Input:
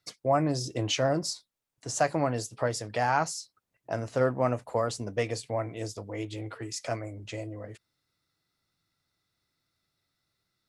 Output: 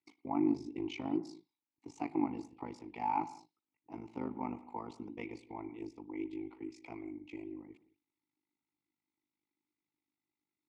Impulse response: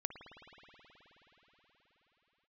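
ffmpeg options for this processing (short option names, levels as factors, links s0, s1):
-filter_complex "[0:a]asplit=3[s0][s1][s2];[s0]bandpass=f=300:t=q:w=8,volume=1[s3];[s1]bandpass=f=870:t=q:w=8,volume=0.501[s4];[s2]bandpass=f=2240:t=q:w=8,volume=0.355[s5];[s3][s4][s5]amix=inputs=3:normalize=0,tremolo=f=51:d=0.889,asplit=2[s6][s7];[1:a]atrim=start_sample=2205,afade=t=out:st=0.26:d=0.01,atrim=end_sample=11907[s8];[s7][s8]afir=irnorm=-1:irlink=0,volume=0.841[s9];[s6][s9]amix=inputs=2:normalize=0,volume=1.26"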